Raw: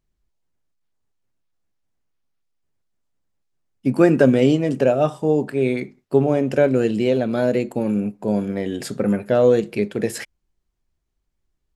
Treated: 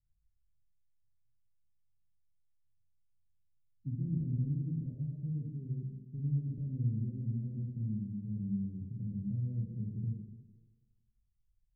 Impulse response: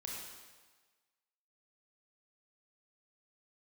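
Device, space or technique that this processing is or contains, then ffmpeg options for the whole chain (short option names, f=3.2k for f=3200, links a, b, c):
club heard from the street: -filter_complex "[0:a]alimiter=limit=-9.5dB:level=0:latency=1:release=53,lowpass=f=140:w=0.5412,lowpass=f=140:w=1.3066[a];[1:a]atrim=start_sample=2205[b];[a][b]afir=irnorm=-1:irlink=0"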